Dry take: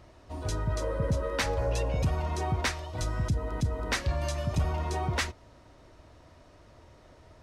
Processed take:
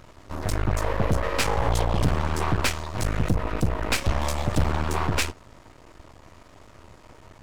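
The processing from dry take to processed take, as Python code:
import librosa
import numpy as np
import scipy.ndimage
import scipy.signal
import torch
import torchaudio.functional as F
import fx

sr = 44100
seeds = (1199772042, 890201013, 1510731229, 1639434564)

y = np.maximum(x, 0.0)
y = fx.formant_shift(y, sr, semitones=4)
y = fx.doppler_dist(y, sr, depth_ms=0.72)
y = F.gain(torch.from_numpy(y), 9.0).numpy()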